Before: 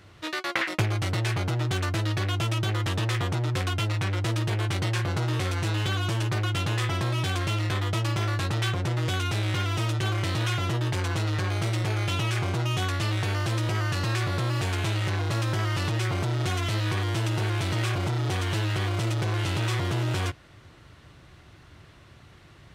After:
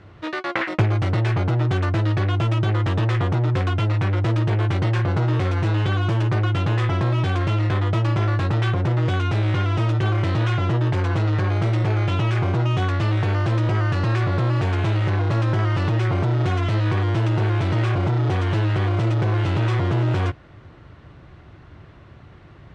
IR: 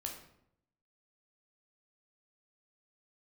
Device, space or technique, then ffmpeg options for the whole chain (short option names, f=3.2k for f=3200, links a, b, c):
through cloth: -af "lowpass=7.3k,highshelf=f=2.9k:g=-17,volume=7dB"